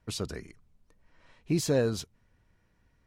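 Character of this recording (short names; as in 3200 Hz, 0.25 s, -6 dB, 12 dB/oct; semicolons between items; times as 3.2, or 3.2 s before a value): noise floor -70 dBFS; spectral tilt -5.0 dB/oct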